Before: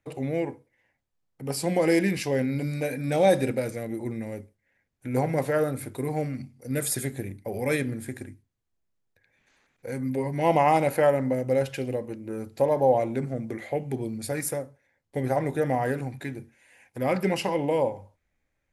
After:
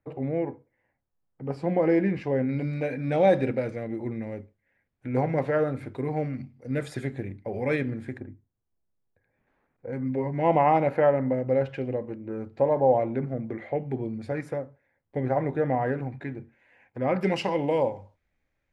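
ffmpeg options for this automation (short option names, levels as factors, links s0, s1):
-af "asetnsamples=n=441:p=0,asendcmd='2.49 lowpass f 2700;8.18 lowpass f 1100;9.93 lowpass f 2000;17.21 lowpass f 5000',lowpass=1500"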